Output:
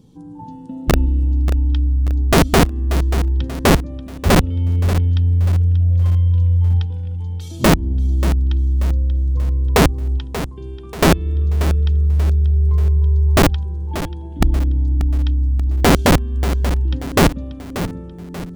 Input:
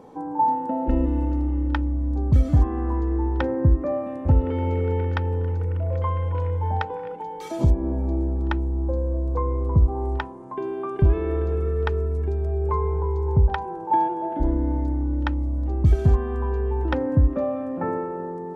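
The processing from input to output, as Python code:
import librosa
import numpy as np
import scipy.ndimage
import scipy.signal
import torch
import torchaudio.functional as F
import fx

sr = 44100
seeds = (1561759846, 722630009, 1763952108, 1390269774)

p1 = fx.curve_eq(x, sr, hz=(150.0, 690.0, 2100.0, 3200.0), db=(0, -29, -21, -4))
p2 = (np.mod(10.0 ** (14.5 / 20.0) * p1 + 1.0, 2.0) - 1.0) / 10.0 ** (14.5 / 20.0)
p3 = p2 + fx.echo_feedback(p2, sr, ms=585, feedback_pct=43, wet_db=-12.0, dry=0)
y = p3 * librosa.db_to_amplitude(8.5)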